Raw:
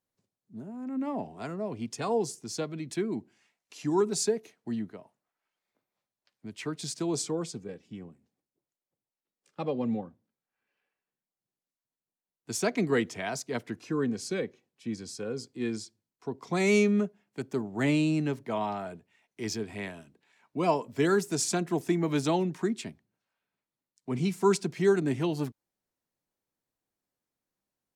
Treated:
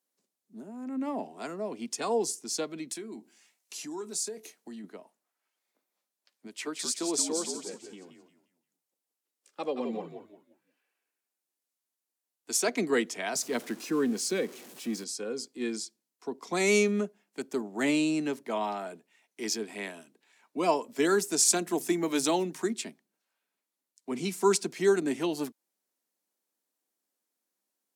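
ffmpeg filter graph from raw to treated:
-filter_complex "[0:a]asettb=1/sr,asplit=3[a][b][c];[a]atrim=end=2.914[d];[b]atrim=start=2.91:end=4.84,asetpts=PTS-STARTPTS,afade=t=in:d=0.004:c=qsin,afade=t=out:st=1.926:d=0.004:c=qsin,highshelf=f=4.6k:g=7,asplit=2[e][f];[f]adelay=23,volume=-13dB[g];[e][g]amix=inputs=2:normalize=0,atrim=end_sample=85113,acompressor=threshold=-41dB:ratio=2.5:attack=3.2:release=140:knee=1:detection=peak[h];[c]atrim=start=4.836[i];[d][h]acrossfade=d=0.004:c1=hsin:c2=qsin[j];[j][i]acrossfade=d=0.004:c1=qsin:c2=hsin,asettb=1/sr,asplit=3[k][l][m];[k]atrim=end=6.474[n];[l]atrim=start=6.47:end=12.69,asetpts=PTS-STARTPTS,afade=t=in:d=0.004:c=qsin,afade=t=out:st=6.216:d=0.004:c=qsin,equalizer=f=170:w=1.4:g=-7.5,asplit=5[o][p][q][r][s];[p]adelay=175,afreqshift=-63,volume=-6.5dB[t];[q]adelay=350,afreqshift=-126,volume=-16.1dB[u];[r]adelay=525,afreqshift=-189,volume=-25.8dB[v];[s]adelay=700,afreqshift=-252,volume=-35.4dB[w];[o][t][u][v][w]amix=inputs=5:normalize=0,atrim=end_sample=274302[x];[m]atrim=start=12.686[y];[n][x]acrossfade=d=0.004:c1=hsin:c2=qsin[z];[z][y]acrossfade=d=0.004:c1=qsin:c2=hsin,asettb=1/sr,asplit=3[aa][ab][ac];[aa]atrim=end=13.354[ad];[ab]atrim=start=13.35:end=15.04,asetpts=PTS-STARTPTS,afade=t=in:d=0.004:c=qsin,afade=t=out:st=1.686:d=0.004:c=qsin,aeval=exprs='val(0)+0.5*0.00562*sgn(val(0))':c=same,equalizer=f=140:w=0.47:g=3.5[ae];[ac]atrim=start=15.036[af];[ad][ae]acrossfade=d=0.004:c1=hsin:c2=qsin[ag];[ag][af]acrossfade=d=0.004:c1=qsin:c2=hsin,asettb=1/sr,asplit=3[ah][ai][aj];[ah]atrim=end=21.454[ak];[ai]atrim=start=21.45:end=22.73,asetpts=PTS-STARTPTS,afade=t=in:d=0.004:c=qsin,afade=t=out:st=1.276:d=0.004:c=qsin,highshelf=f=6.9k:g=6,bandreject=f=50:t=h:w=6,bandreject=f=100:t=h:w=6,bandreject=f=150:t=h:w=6,bandreject=f=200:t=h:w=6,bandreject=f=250:t=h:w=6[al];[aj]atrim=start=22.726[am];[ak][al]acrossfade=d=0.004:c1=hsin:c2=qsin[an];[an][am]acrossfade=d=0.004:c1=qsin:c2=hsin,highpass=f=220:w=0.5412,highpass=f=220:w=1.3066,equalizer=f=11k:t=o:w=2:g=8"

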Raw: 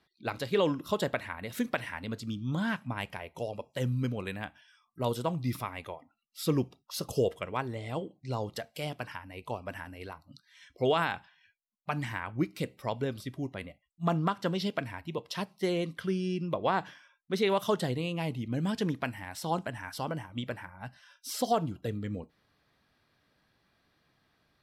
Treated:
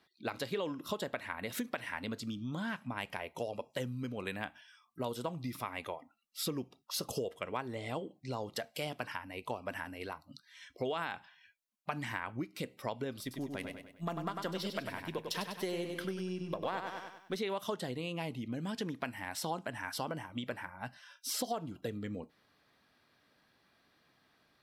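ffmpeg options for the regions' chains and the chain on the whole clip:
-filter_complex "[0:a]asettb=1/sr,asplit=3[a][b][c];[a]atrim=end=13.214[d];[b]atrim=start=13.21:end=17.37,asetpts=PTS-STARTPTS,afade=t=in:d=0.004:c=qsin,afade=t=out:st=4.156:d=0.004:c=qsin,aeval=exprs='if(lt(val(0),0),0.708*val(0),val(0))':c=same,highshelf=f=10k:g=11,aecho=1:1:98|196|294|392|490:0.447|0.201|0.0905|0.0407|0.0183,atrim=end_sample=183456[e];[c]atrim=start=17.366[f];[d][e]acrossfade=d=0.004:c1=hsin:c2=qsin[g];[g][f]acrossfade=d=0.004:c1=qsin:c2=hsin,equalizer=f=250:t=o:w=0.4:g=2.5,acompressor=threshold=-34dB:ratio=6,lowshelf=f=150:g=-10.5,volume=2dB"

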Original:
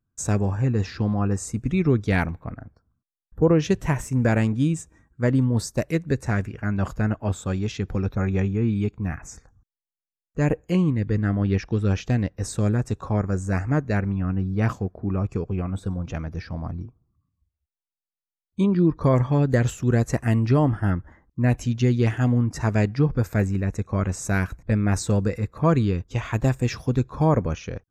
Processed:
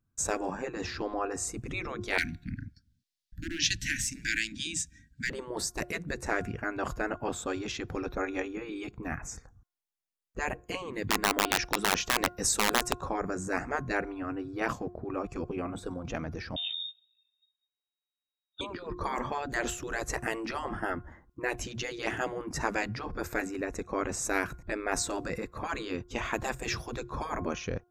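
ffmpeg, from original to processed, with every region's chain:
-filter_complex "[0:a]asettb=1/sr,asplit=3[a][b][c];[a]atrim=end=2.184[d];[b]atrim=start=2.18:end=5.3,asetpts=PTS-STARTPTS,afade=t=in:d=0.004:c=qsin,afade=t=out:st=3.116:d=0.004:c=qsin,equalizer=f=4.5k:t=o:w=1.4:g=12.5,asoftclip=type=hard:threshold=-11.5dB,asuperstop=centerf=680:order=20:qfactor=0.54[e];[c]atrim=start=5.296[f];[d][e]acrossfade=d=0.004:c1=hsin:c2=qsin[g];[g][f]acrossfade=d=0.004:c1=qsin:c2=hsin,asettb=1/sr,asplit=3[h][i][j];[h]atrim=end=10.934[k];[i]atrim=start=10.93:end=12.93,asetpts=PTS-STARTPTS,afade=t=in:d=0.004:c=qsin,afade=t=out:st=1.996:d=0.004:c=qsin,highshelf=f=4k:g=11,aeval=exprs='(mod(4.73*val(0)+1,2)-1)/4.73':c=same[l];[j]atrim=start=12.926[m];[k][l]acrossfade=d=0.004:c1=hsin:c2=qsin[n];[n][m]acrossfade=d=0.004:c1=qsin:c2=hsin,asettb=1/sr,asplit=3[o][p][q];[o]atrim=end=16.564[r];[p]atrim=start=16.56:end=18.61,asetpts=PTS-STARTPTS,afade=t=in:d=0.004:c=qsin,afade=t=out:st=2.046:d=0.004:c=qsin,flanger=delay=16.5:depth=2.8:speed=2.5,lowpass=f=3.2k:t=q:w=0.5098,lowpass=f=3.2k:t=q:w=0.6013,lowpass=f=3.2k:t=q:w=0.9,lowpass=f=3.2k:t=q:w=2.563,afreqshift=-3800[s];[q]atrim=start=18.606[t];[r][s]acrossfade=d=0.004:c1=hsin:c2=qsin[u];[u][t]acrossfade=d=0.004:c1=qsin:c2=hsin,bandreject=f=356:t=h:w=4,bandreject=f=712:t=h:w=4,bandreject=f=1.068k:t=h:w=4,bandreject=f=1.424k:t=h:w=4,afftfilt=real='re*lt(hypot(re,im),0.251)':imag='im*lt(hypot(re,im),0.251)':win_size=1024:overlap=0.75"

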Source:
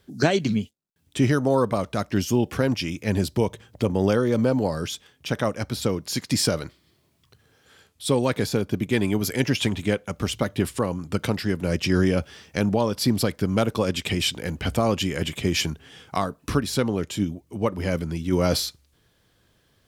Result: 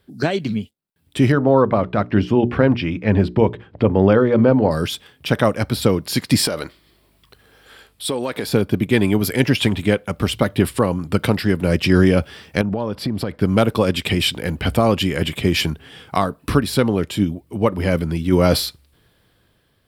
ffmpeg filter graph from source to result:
-filter_complex "[0:a]asettb=1/sr,asplit=3[a][b][c];[a]atrim=end=1.324[d];[b]atrim=start=1.32:end=4.71,asetpts=PTS-STARTPTS,afade=t=in:d=0.004:c=qsin,afade=t=out:st=3.386:d=0.004:c=qsin,lowpass=2.4k,bandreject=f=60:t=h:w=6,bandreject=f=120:t=h:w=6,bandreject=f=180:t=h:w=6,bandreject=f=240:t=h:w=6,bandreject=f=300:t=h:w=6,bandreject=f=360:t=h:w=6,bandreject=f=420:t=h:w=6[e];[c]atrim=start=4.706[f];[d][e]acrossfade=d=0.004:c1=hsin:c2=qsin[g];[g][f]acrossfade=d=0.004:c1=qsin:c2=hsin,asettb=1/sr,asplit=3[h][i][j];[h]atrim=end=6.474[k];[i]atrim=start=6.47:end=8.49,asetpts=PTS-STARTPTS,afade=t=in:d=0.004:c=qsin,afade=t=out:st=2.016:d=0.004:c=qsin,equalizer=f=110:t=o:w=1.7:g=-11.5,acompressor=threshold=-26dB:ratio=6:attack=3.2:release=140:knee=1:detection=peak,aeval=exprs='val(0)+0.000316*(sin(2*PI*50*n/s)+sin(2*PI*2*50*n/s)/2+sin(2*PI*3*50*n/s)/3+sin(2*PI*4*50*n/s)/4+sin(2*PI*5*50*n/s)/5)':c=same[l];[j]atrim=start=8.486[m];[k][l]acrossfade=d=0.004:c1=hsin:c2=qsin[n];[n][m]acrossfade=d=0.004:c1=qsin:c2=hsin,asettb=1/sr,asplit=3[o][p][q];[o]atrim=end=12.614[r];[p]atrim=start=12.61:end=13.42,asetpts=PTS-STARTPTS,afade=t=in:d=0.004:c=qsin,afade=t=out:st=0.806:d=0.004:c=qsin,lowpass=f=2k:p=1,acompressor=threshold=-25dB:ratio=4:attack=3.2:release=140:knee=1:detection=peak[s];[q]atrim=start=13.416[t];[r][s]acrossfade=d=0.004:c1=hsin:c2=qsin[u];[u][t]acrossfade=d=0.004:c1=qsin:c2=hsin,equalizer=f=6.4k:w=2.6:g=-11,dynaudnorm=f=250:g=7:m=11.5dB"

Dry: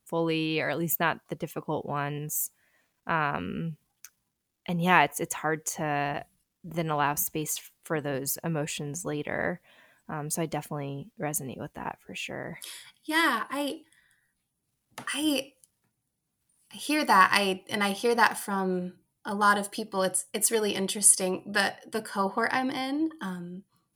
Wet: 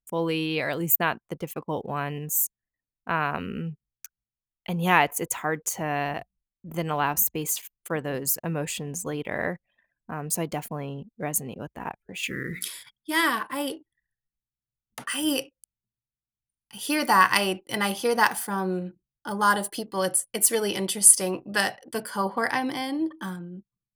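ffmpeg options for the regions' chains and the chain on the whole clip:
-filter_complex "[0:a]asettb=1/sr,asplit=3[a][b][c];[a]atrim=end=12.234[d];[b]atrim=start=12.23:end=12.68,asetpts=PTS-STARTPTS,afade=t=in:d=0.004:c=qsin,afade=t=out:st=0.446:d=0.004:c=qsin,bandreject=f=60:t=h:w=6,bandreject=f=120:t=h:w=6,bandreject=f=180:t=h:w=6,bandreject=f=240:t=h:w=6,bandreject=f=300:t=h:w=6,bandreject=f=360:t=h:w=6,bandreject=f=420:t=h:w=6,bandreject=f=480:t=h:w=6,acontrast=54,asuperstop=centerf=770:order=8:qfactor=0.87[e];[c]atrim=start=12.676[f];[d][e]acrossfade=d=0.004:c1=hsin:c2=qsin[g];[g][f]acrossfade=d=0.004:c1=qsin:c2=hsin,anlmdn=0.00398,highshelf=f=12k:g=10.5,volume=1dB"

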